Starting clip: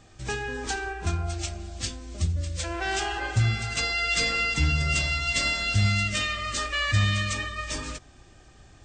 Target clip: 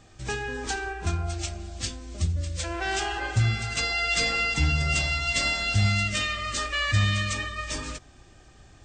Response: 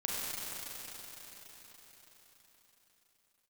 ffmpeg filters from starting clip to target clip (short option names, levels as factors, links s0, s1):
-filter_complex "[0:a]asettb=1/sr,asplit=3[s0][s1][s2];[s0]atrim=end=3.914[s3];[s1]atrim=start=3.91:end=6.12,asetpts=PTS-STARTPTS,afade=t=in:d=0.004:c=qsin,afade=t=out:st=2.206:d=0.004:c=qsin,equalizer=f=780:t=o:w=0.28:g=7[s4];[s2]atrim=start=6.116[s5];[s3][s4]acrossfade=d=0.004:c1=hsin:c2=qsin[s6];[s6][s5]acrossfade=d=0.004:c1=qsin:c2=hsin"